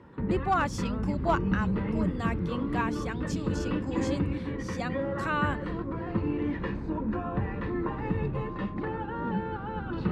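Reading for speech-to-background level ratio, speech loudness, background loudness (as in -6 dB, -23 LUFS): -2.0 dB, -34.0 LUFS, -32.0 LUFS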